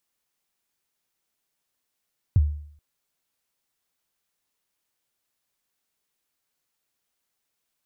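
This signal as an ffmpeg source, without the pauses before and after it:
ffmpeg -f lavfi -i "aevalsrc='0.266*pow(10,-3*t/0.6)*sin(2*PI*(120*0.034/log(74/120)*(exp(log(74/120)*min(t,0.034)/0.034)-1)+74*max(t-0.034,0)))':duration=0.43:sample_rate=44100" out.wav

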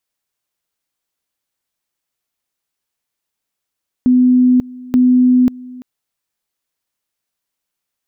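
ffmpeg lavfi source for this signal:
ffmpeg -f lavfi -i "aevalsrc='pow(10,(-7-22*gte(mod(t,0.88),0.54))/20)*sin(2*PI*251*t)':duration=1.76:sample_rate=44100" out.wav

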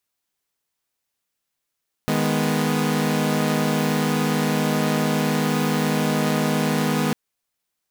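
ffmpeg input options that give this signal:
ffmpeg -f lavfi -i "aevalsrc='0.0891*((2*mod(155.56*t,1)-1)+(2*mod(207.65*t,1)-1)+(2*mod(246.94*t,1)-1))':duration=5.05:sample_rate=44100" out.wav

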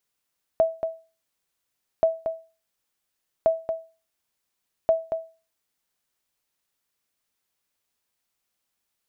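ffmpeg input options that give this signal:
ffmpeg -f lavfi -i "aevalsrc='0.266*(sin(2*PI*652*mod(t,1.43))*exp(-6.91*mod(t,1.43)/0.33)+0.398*sin(2*PI*652*max(mod(t,1.43)-0.23,0))*exp(-6.91*max(mod(t,1.43)-0.23,0)/0.33))':duration=5.72:sample_rate=44100" out.wav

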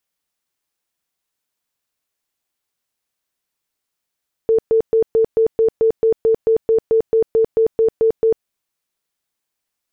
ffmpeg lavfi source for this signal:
ffmpeg -f lavfi -i "aevalsrc='0.299*sin(2*PI*448*mod(t,0.22))*lt(mod(t,0.22),43/448)':duration=3.96:sample_rate=44100" out.wav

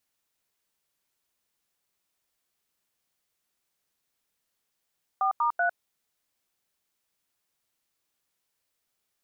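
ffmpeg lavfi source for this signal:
ffmpeg -f lavfi -i "aevalsrc='0.0596*clip(min(mod(t,0.191),0.103-mod(t,0.191))/0.002,0,1)*(eq(floor(t/0.191),0)*(sin(2*PI*770*mod(t,0.191))+sin(2*PI*1209*mod(t,0.191)))+eq(floor(t/0.191),1)*(sin(2*PI*941*mod(t,0.191))+sin(2*PI*1209*mod(t,0.191)))+eq(floor(t/0.191),2)*(sin(2*PI*697*mod(t,0.191))+sin(2*PI*1477*mod(t,0.191))))':duration=0.573:sample_rate=44100" out.wav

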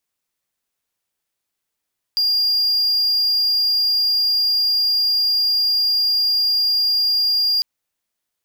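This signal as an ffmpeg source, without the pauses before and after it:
ffmpeg -f lavfi -i "aevalsrc='0.224*(1-4*abs(mod(4810*t+0.25,1)-0.5))':duration=5.45:sample_rate=44100" out.wav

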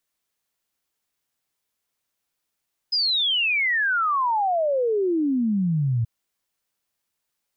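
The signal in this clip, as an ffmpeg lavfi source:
ffmpeg -f lavfi -i "aevalsrc='0.112*clip(min(t,3.13-t)/0.01,0,1)*sin(2*PI*5100*3.13/log(110/5100)*(exp(log(110/5100)*t/3.13)-1))':duration=3.13:sample_rate=44100" out.wav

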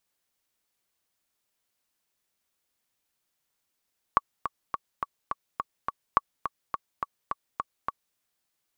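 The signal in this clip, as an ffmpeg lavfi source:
ffmpeg -f lavfi -i "aevalsrc='pow(10,(-6-9.5*gte(mod(t,7*60/210),60/210))/20)*sin(2*PI*1130*mod(t,60/210))*exp(-6.91*mod(t,60/210)/0.03)':duration=4:sample_rate=44100" out.wav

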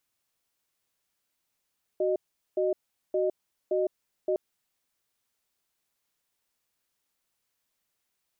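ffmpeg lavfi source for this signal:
ffmpeg -f lavfi -i "aevalsrc='0.0501*(sin(2*PI*373*t)+sin(2*PI*616*t))*clip(min(mod(t,0.57),0.16-mod(t,0.57))/0.005,0,1)':duration=2.36:sample_rate=44100" out.wav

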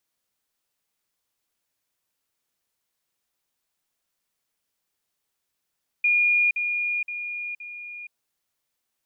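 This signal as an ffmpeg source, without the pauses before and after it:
ffmpeg -f lavfi -i "aevalsrc='pow(10,(-17-6*floor(t/0.52))/20)*sin(2*PI*2430*t)*clip(min(mod(t,0.52),0.47-mod(t,0.52))/0.005,0,1)':duration=2.08:sample_rate=44100" out.wav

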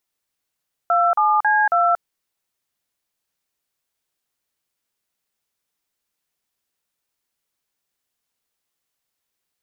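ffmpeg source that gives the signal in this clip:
ffmpeg -f lavfi -i "aevalsrc='0.15*clip(min(mod(t,0.273),0.232-mod(t,0.273))/0.002,0,1)*(eq(floor(t/0.273),0)*(sin(2*PI*697*mod(t,0.273))+sin(2*PI*1336*mod(t,0.273)))+eq(floor(t/0.273),1)*(sin(2*PI*852*mod(t,0.273))+sin(2*PI*1209*mod(t,0.273)))+eq(floor(t/0.273),2)*(sin(2*PI*852*mod(t,0.273))+sin(2*PI*1633*mod(t,0.273)))+eq(floor(t/0.273),3)*(sin(2*PI*697*mod(t,0.273))+sin(2*PI*1336*mod(t,0.273))))':duration=1.092:sample_rate=44100" out.wav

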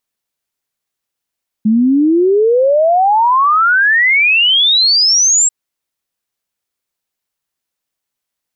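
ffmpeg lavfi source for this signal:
ffmpeg -f lavfi -i "aevalsrc='0.422*clip(min(t,3.84-t)/0.01,0,1)*sin(2*PI*210*3.84/log(7700/210)*(exp(log(7700/210)*t/3.84)-1))':duration=3.84:sample_rate=44100" out.wav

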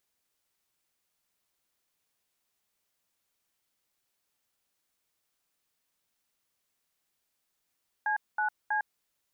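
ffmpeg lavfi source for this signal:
ffmpeg -f lavfi -i "aevalsrc='0.0376*clip(min(mod(t,0.322),0.105-mod(t,0.322))/0.002,0,1)*(eq(floor(t/0.322),0)*(sin(2*PI*852*mod(t,0.322))+sin(2*PI*1633*mod(t,0.322)))+eq(floor(t/0.322),1)*(sin(2*PI*852*mod(t,0.322))+sin(2*PI*1477*mod(t,0.322)))+eq(floor(t/0.322),2)*(sin(2*PI*852*mod(t,0.322))+sin(2*PI*1633*mod(t,0.322))))':duration=0.966:sample_rate=44100" out.wav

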